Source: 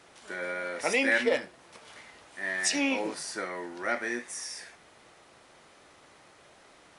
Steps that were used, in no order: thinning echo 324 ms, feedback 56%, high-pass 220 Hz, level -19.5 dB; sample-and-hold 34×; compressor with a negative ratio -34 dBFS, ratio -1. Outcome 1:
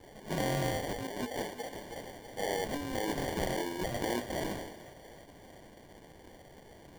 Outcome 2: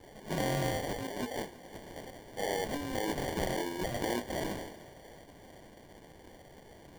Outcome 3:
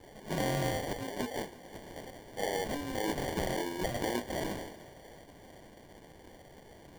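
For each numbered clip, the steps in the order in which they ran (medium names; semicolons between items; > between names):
sample-and-hold > thinning echo > compressor with a negative ratio; sample-and-hold > compressor with a negative ratio > thinning echo; compressor with a negative ratio > sample-and-hold > thinning echo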